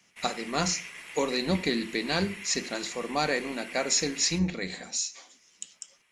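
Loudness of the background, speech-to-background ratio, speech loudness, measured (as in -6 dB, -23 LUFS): -41.0 LUFS, 12.0 dB, -29.0 LUFS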